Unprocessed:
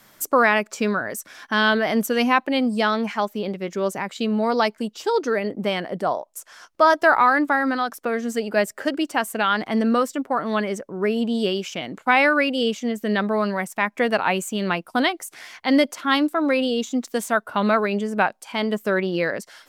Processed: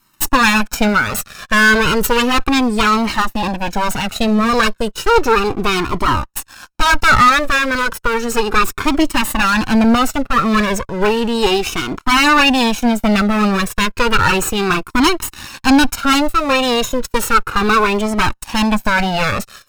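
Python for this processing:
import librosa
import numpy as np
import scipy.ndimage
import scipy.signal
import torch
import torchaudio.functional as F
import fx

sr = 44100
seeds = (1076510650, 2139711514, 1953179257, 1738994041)

y = fx.lower_of_two(x, sr, delay_ms=0.74)
y = fx.leveller(y, sr, passes=3)
y = fx.comb_cascade(y, sr, direction='falling', hz=0.33)
y = y * 10.0 ** (6.5 / 20.0)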